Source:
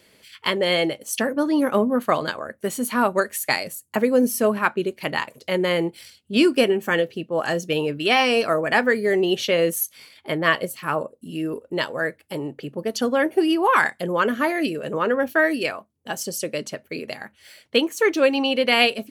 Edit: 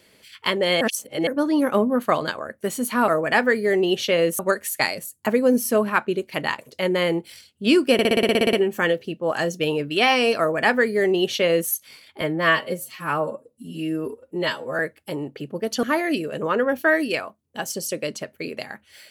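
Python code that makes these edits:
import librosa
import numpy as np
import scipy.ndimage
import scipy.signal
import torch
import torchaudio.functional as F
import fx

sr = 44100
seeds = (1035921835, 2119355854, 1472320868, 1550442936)

y = fx.edit(x, sr, fx.reverse_span(start_s=0.81, length_s=0.46),
    fx.stutter(start_s=6.62, slice_s=0.06, count=11),
    fx.duplicate(start_s=8.48, length_s=1.31, to_s=3.08),
    fx.stretch_span(start_s=10.3, length_s=1.72, factor=1.5),
    fx.cut(start_s=13.06, length_s=1.28), tone=tone)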